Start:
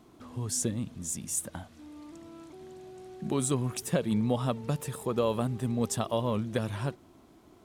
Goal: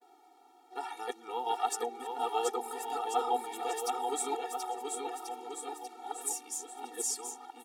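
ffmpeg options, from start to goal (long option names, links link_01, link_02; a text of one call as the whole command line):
ffmpeg -i in.wav -filter_complex "[0:a]areverse,highpass=frequency=690:width_type=q:width=3.6,asplit=2[link_01][link_02];[link_02]aecho=0:1:730|1387|1978|2510|2989:0.631|0.398|0.251|0.158|0.1[link_03];[link_01][link_03]amix=inputs=2:normalize=0,afftfilt=real='re*eq(mod(floor(b*sr/1024/240),2),1)':imag='im*eq(mod(floor(b*sr/1024/240),2),1)':win_size=1024:overlap=0.75" out.wav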